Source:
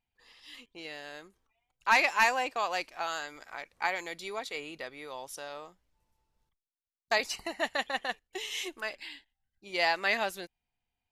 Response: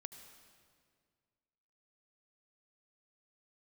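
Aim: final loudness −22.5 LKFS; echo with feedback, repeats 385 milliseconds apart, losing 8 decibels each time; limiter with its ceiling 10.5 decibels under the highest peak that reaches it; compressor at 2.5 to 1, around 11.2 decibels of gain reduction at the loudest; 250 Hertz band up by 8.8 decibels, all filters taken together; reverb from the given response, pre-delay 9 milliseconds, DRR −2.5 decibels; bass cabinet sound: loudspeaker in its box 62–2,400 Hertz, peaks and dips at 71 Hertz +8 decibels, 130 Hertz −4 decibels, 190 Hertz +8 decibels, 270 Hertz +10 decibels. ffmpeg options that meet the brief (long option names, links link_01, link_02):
-filter_complex "[0:a]equalizer=frequency=250:width_type=o:gain=3,acompressor=threshold=-36dB:ratio=2.5,alimiter=level_in=4dB:limit=-24dB:level=0:latency=1,volume=-4dB,aecho=1:1:385|770|1155|1540|1925:0.398|0.159|0.0637|0.0255|0.0102,asplit=2[link_01][link_02];[1:a]atrim=start_sample=2205,adelay=9[link_03];[link_02][link_03]afir=irnorm=-1:irlink=0,volume=7dB[link_04];[link_01][link_04]amix=inputs=2:normalize=0,highpass=frequency=62:width=0.5412,highpass=frequency=62:width=1.3066,equalizer=frequency=71:width_type=q:width=4:gain=8,equalizer=frequency=130:width_type=q:width=4:gain=-4,equalizer=frequency=190:width_type=q:width=4:gain=8,equalizer=frequency=270:width_type=q:width=4:gain=10,lowpass=frequency=2400:width=0.5412,lowpass=frequency=2400:width=1.3066,volume=15dB"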